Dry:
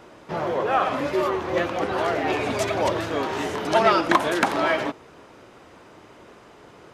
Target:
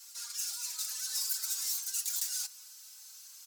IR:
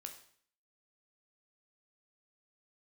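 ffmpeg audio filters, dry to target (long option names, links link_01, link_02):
-filter_complex "[0:a]highpass=92,acrossover=split=340[link_01][link_02];[link_02]adynamicsmooth=sensitivity=5.5:basefreq=5600[link_03];[link_01][link_03]amix=inputs=2:normalize=0,equalizer=frequency=630:width_type=o:width=0.33:gain=8,equalizer=frequency=1250:width_type=o:width=0.33:gain=9,equalizer=frequency=5000:width_type=o:width=0.33:gain=-5,areverse,acompressor=threshold=-24dB:ratio=12,areverse,asoftclip=type=tanh:threshold=-26dB,aexciter=amount=11.1:drive=7.5:freq=2000,afreqshift=110,aeval=exprs='0.562*(cos(1*acos(clip(val(0)/0.562,-1,1)))-cos(1*PI/2))+0.0794*(cos(4*acos(clip(val(0)/0.562,-1,1)))-cos(4*PI/2))':channel_layout=same,aderivative,asplit=2[link_04][link_05];[link_05]adelay=17,volume=-4dB[link_06];[link_04][link_06]amix=inputs=2:normalize=0,asetrate=88200,aresample=44100,asplit=2[link_07][link_08];[link_08]adelay=3.9,afreqshift=0.57[link_09];[link_07][link_09]amix=inputs=2:normalize=1,volume=-4.5dB"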